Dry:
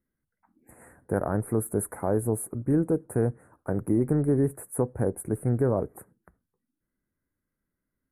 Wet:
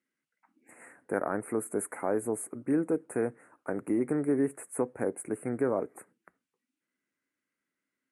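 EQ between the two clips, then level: speaker cabinet 270–8800 Hz, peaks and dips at 270 Hz +4 dB, 1300 Hz +3 dB, 2800 Hz +6 dB; bell 2200 Hz +9.5 dB 0.64 oct; high shelf 4000 Hz +8 dB; -3.0 dB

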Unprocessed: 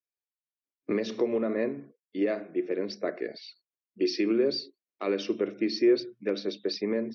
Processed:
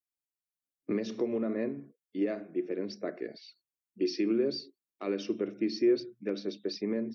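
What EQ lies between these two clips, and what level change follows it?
ten-band EQ 500 Hz -5 dB, 1000 Hz -5 dB, 2000 Hz -5 dB, 4000 Hz -6 dB; 0.0 dB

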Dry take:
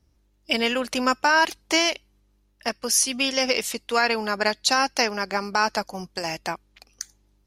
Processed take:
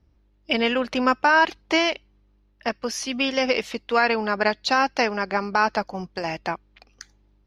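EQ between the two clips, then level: air absorption 260 m; high shelf 8400 Hz +10 dB; +3.0 dB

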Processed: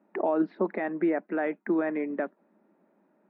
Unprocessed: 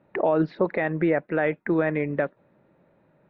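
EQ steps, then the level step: elliptic high-pass 200 Hz, stop band 40 dB; LPF 1000 Hz 6 dB/oct; bell 510 Hz -9.5 dB 0.39 oct; 0.0 dB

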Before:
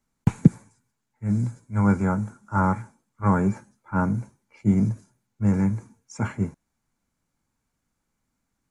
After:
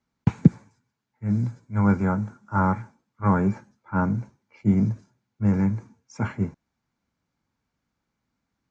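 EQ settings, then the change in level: HPF 49 Hz; LPF 5700 Hz 24 dB/oct; 0.0 dB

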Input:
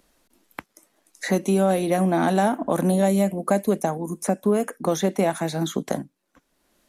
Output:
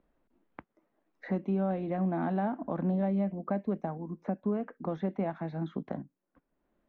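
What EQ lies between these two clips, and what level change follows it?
dynamic EQ 450 Hz, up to -5 dB, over -35 dBFS, Q 1.1; air absorption 240 m; tape spacing loss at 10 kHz 37 dB; -6.0 dB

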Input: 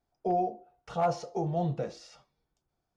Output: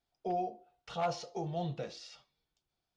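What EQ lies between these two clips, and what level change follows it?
bell 3500 Hz +12.5 dB 1.7 oct; -7.0 dB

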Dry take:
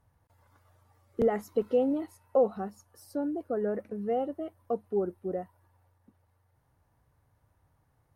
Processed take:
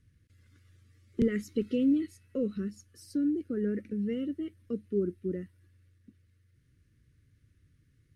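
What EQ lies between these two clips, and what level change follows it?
Chebyshev band-stop 310–2100 Hz, order 2; LPF 8600 Hz 12 dB/oct; dynamic EQ 800 Hz, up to -3 dB, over -47 dBFS, Q 0.77; +5.5 dB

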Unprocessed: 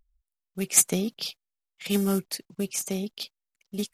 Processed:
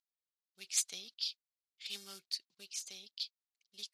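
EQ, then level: band-pass 4300 Hz, Q 2.8; -1.5 dB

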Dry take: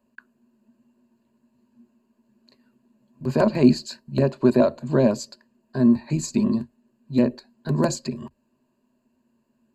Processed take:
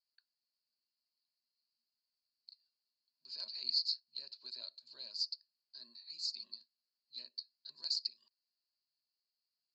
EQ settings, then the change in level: Butterworth band-pass 4700 Hz, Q 4.5; tilt -4 dB/oct; +12.5 dB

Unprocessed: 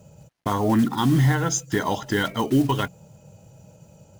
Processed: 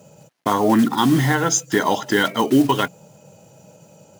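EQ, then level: HPF 210 Hz 12 dB/oct; +6.0 dB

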